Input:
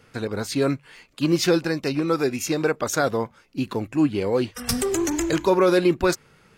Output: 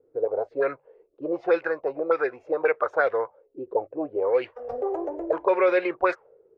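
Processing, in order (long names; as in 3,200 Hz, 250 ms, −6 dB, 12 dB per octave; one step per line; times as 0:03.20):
low shelf with overshoot 320 Hz −14 dB, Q 3
envelope-controlled low-pass 320–2,200 Hz up, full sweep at −13 dBFS
level −7 dB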